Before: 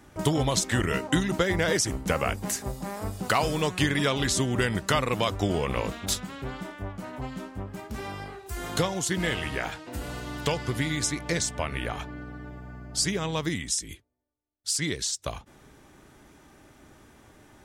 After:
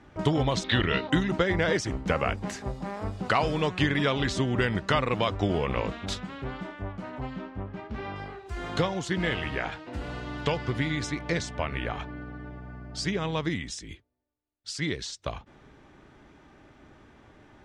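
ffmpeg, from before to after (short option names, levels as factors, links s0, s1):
-filter_complex "[0:a]asettb=1/sr,asplit=3[s0][s1][s2];[s0]atrim=end=0.644[s3];[s1]atrim=start=0.64:end=1.1,asetpts=PTS-STARTPTS,afade=t=in:d=0.004:c=qsin,afade=t=out:st=0.456:d=0.004:c=qsin,lowpass=f=3800:t=q:w=8[s4];[s2]atrim=start=1.096[s5];[s3][s4]acrossfade=d=0.004:c1=hsin:c2=qsin[s6];[s6][s5]acrossfade=d=0.004:c1=qsin:c2=hsin,asettb=1/sr,asplit=3[s7][s8][s9];[s7]atrim=end=7.364[s10];[s8]atrim=start=7.36:end=8.16,asetpts=PTS-STARTPTS,afade=t=in:d=0.004:c=qsin,afade=t=out:st=0.796:d=0.004:c=qsin,lowpass=4300[s11];[s9]atrim=start=8.156[s12];[s10][s11]acrossfade=d=0.004:c1=hsin:c2=qsin[s13];[s13][s12]acrossfade=d=0.004:c1=qsin:c2=hsin,lowpass=3700"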